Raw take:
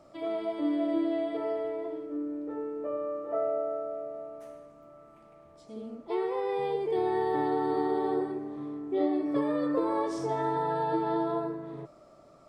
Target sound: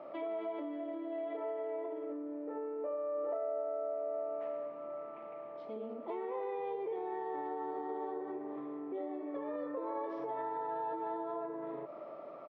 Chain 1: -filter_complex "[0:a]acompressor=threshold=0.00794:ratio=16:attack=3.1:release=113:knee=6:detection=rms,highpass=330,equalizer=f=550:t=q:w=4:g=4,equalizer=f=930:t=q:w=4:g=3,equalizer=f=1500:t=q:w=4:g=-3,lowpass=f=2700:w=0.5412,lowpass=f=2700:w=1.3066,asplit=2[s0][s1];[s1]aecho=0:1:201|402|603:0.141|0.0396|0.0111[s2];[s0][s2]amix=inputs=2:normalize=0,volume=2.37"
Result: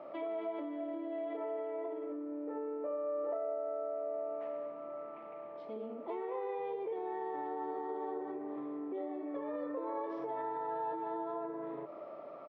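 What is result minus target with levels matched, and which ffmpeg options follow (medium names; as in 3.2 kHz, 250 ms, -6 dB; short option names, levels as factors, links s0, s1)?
echo 107 ms early
-filter_complex "[0:a]acompressor=threshold=0.00794:ratio=16:attack=3.1:release=113:knee=6:detection=rms,highpass=330,equalizer=f=550:t=q:w=4:g=4,equalizer=f=930:t=q:w=4:g=3,equalizer=f=1500:t=q:w=4:g=-3,lowpass=f=2700:w=0.5412,lowpass=f=2700:w=1.3066,asplit=2[s0][s1];[s1]aecho=0:1:308|616|924:0.141|0.0396|0.0111[s2];[s0][s2]amix=inputs=2:normalize=0,volume=2.37"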